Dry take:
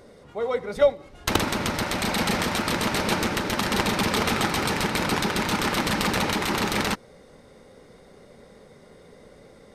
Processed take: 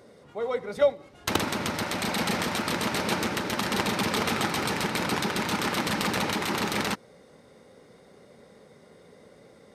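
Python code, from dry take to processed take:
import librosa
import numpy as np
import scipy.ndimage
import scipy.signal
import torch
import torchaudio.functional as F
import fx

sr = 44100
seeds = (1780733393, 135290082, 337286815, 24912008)

y = scipy.signal.sosfilt(scipy.signal.butter(2, 94.0, 'highpass', fs=sr, output='sos'), x)
y = F.gain(torch.from_numpy(y), -3.0).numpy()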